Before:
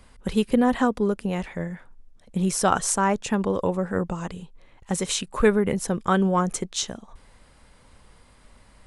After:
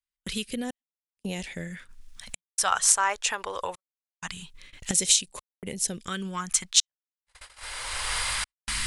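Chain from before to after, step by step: recorder AGC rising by 20 dB/s; trance gate "xxx..xxxxx.xx" 64 bpm -60 dB; phase shifter stages 2, 0.23 Hz, lowest notch 190–1300 Hz; gate -35 dBFS, range -39 dB; tilt shelf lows -8.5 dB, about 720 Hz; trim -5.5 dB

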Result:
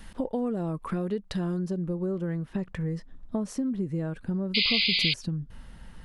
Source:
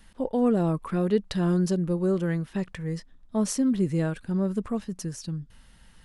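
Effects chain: treble shelf 2 kHz -3.5 dB, from 1.59 s -11.5 dB; compression 6:1, threshold -37 dBFS, peak gain reduction 18 dB; 4.54–5.14 s: painted sound noise 2–5 kHz -34 dBFS; trim +9 dB

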